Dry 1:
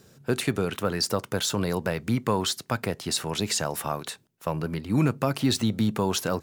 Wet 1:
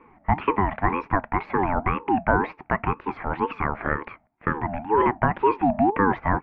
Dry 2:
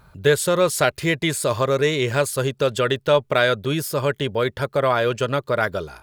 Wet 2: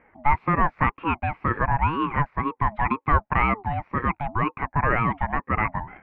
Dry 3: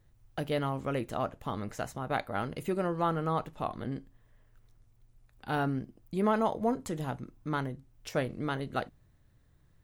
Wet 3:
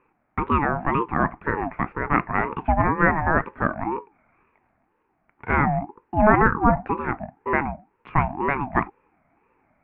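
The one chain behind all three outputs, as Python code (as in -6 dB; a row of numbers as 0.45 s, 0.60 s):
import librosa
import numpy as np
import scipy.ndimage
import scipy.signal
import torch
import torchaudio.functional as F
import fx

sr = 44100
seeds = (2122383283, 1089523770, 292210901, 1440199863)

y = scipy.signal.sosfilt(scipy.signal.cheby1(4, 1.0, [190.0, 1900.0], 'bandpass', fs=sr, output='sos'), x)
y = fx.ring_lfo(y, sr, carrier_hz=560.0, swing_pct=25, hz=2.0)
y = y * 10.0 ** (-24 / 20.0) / np.sqrt(np.mean(np.square(y)))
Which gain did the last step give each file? +8.5 dB, +1.5 dB, +14.5 dB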